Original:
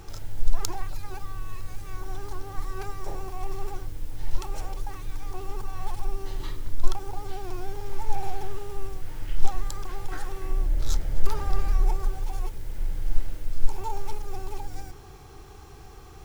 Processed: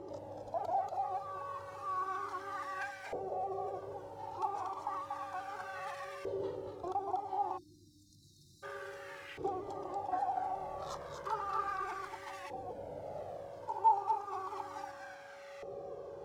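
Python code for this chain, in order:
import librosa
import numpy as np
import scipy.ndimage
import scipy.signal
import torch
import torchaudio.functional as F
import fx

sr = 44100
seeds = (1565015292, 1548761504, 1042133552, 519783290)

p1 = scipy.signal.sosfilt(scipy.signal.butter(2, 110.0, 'highpass', fs=sr, output='sos'), x)
p2 = p1 + fx.echo_single(p1, sr, ms=237, db=-6.0, dry=0)
p3 = 10.0 ** (-27.0 / 20.0) * (np.abs((p2 / 10.0 ** (-27.0 / 20.0) + 3.0) % 4.0 - 2.0) - 1.0)
p4 = fx.filter_lfo_bandpass(p3, sr, shape='saw_up', hz=0.32, low_hz=480.0, high_hz=2000.0, q=3.8)
p5 = p4 + 10.0 ** (-63.0 / 20.0) * np.sin(2.0 * np.pi * 560.0 * np.arange(len(p4)) / sr)
p6 = fx.peak_eq(p5, sr, hz=1800.0, db=-8.5, octaves=1.8)
p7 = fx.rider(p6, sr, range_db=4, speed_s=0.5)
p8 = p6 + (p7 * 10.0 ** (0.0 / 20.0))
p9 = fx.spec_erase(p8, sr, start_s=7.57, length_s=1.06, low_hz=350.0, high_hz=3600.0)
p10 = fx.comb_cascade(p9, sr, direction='falling', hz=0.41)
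y = p10 * 10.0 ** (11.5 / 20.0)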